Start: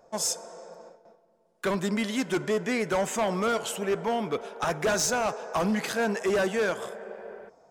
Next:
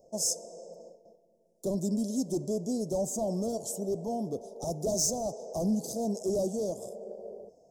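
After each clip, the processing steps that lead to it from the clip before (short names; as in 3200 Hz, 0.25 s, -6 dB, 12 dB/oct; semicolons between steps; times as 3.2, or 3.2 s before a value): elliptic band-stop 620–5600 Hz, stop band 80 dB; dynamic EQ 460 Hz, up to -6 dB, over -40 dBFS, Q 2.4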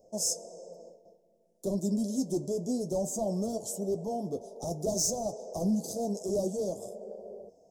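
flange 0.56 Hz, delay 9.4 ms, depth 2.5 ms, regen -48%; gain +3.5 dB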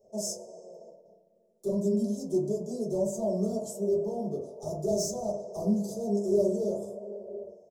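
outdoor echo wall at 23 m, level -28 dB; reverb RT60 0.60 s, pre-delay 3 ms, DRR -7 dB; gain -8.5 dB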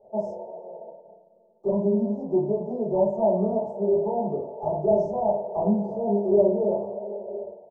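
synth low-pass 880 Hz, resonance Q 7.1; gain +3 dB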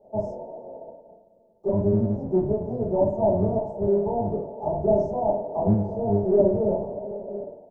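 octaver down 1 oct, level -2 dB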